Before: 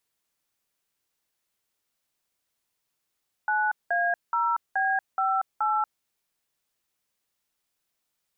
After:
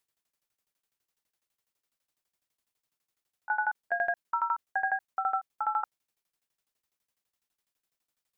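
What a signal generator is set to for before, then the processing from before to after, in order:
DTMF "9A0B58", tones 235 ms, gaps 190 ms, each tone -24.5 dBFS
tremolo saw down 12 Hz, depth 95%

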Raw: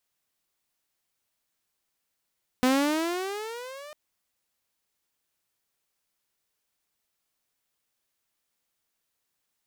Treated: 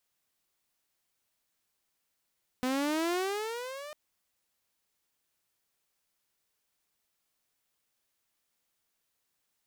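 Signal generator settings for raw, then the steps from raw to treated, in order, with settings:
gliding synth tone saw, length 1.30 s, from 250 Hz, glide +15.5 st, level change -23 dB, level -16 dB
peak limiter -25.5 dBFS

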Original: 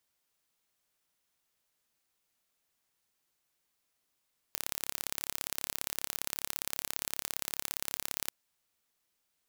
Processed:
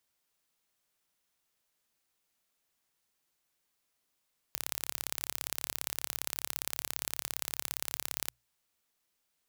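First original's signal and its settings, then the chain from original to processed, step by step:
pulse train 34.8 per s, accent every 2, -5.5 dBFS 3.75 s
hum notches 60/120 Hz

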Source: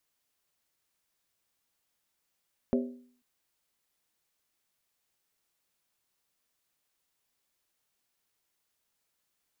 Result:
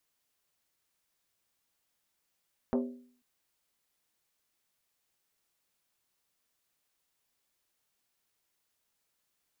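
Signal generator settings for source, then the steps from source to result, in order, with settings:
skin hit length 0.49 s, lowest mode 247 Hz, decay 0.55 s, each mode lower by 4 dB, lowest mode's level -22.5 dB
transformer saturation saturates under 380 Hz

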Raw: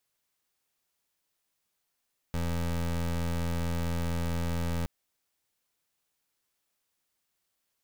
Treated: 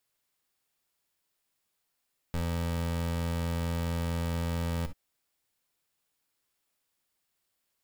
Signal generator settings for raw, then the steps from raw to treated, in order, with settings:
pulse 84.5 Hz, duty 24% -30 dBFS 2.52 s
band-stop 6.1 kHz, Q 16; gated-style reverb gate 80 ms rising, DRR 11.5 dB

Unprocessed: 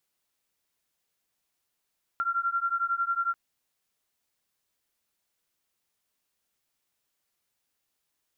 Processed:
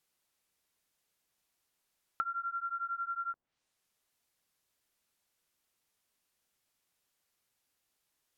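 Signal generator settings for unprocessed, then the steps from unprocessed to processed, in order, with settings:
beating tones 1.37 kHz, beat 11 Hz, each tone -28.5 dBFS 1.14 s
low-pass that closes with the level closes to 870 Hz, closed at -30 dBFS

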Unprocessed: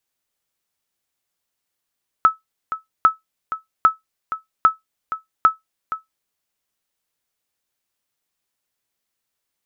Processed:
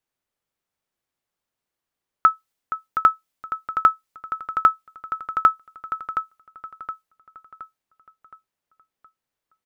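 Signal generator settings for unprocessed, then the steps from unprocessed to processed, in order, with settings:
sonar ping 1.3 kHz, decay 0.15 s, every 0.80 s, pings 5, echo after 0.47 s, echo -12.5 dB -3.5 dBFS
on a send: feedback delay 719 ms, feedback 46%, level -9.5 dB; on the sum: tape noise reduction on one side only decoder only

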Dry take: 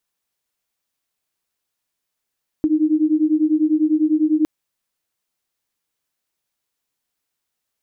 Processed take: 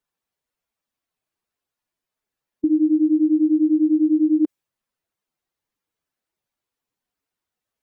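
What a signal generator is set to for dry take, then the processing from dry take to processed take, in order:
beating tones 304 Hz, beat 10 Hz, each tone -17 dBFS 1.81 s
spectral contrast enhancement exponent 1.6; tape noise reduction on one side only decoder only

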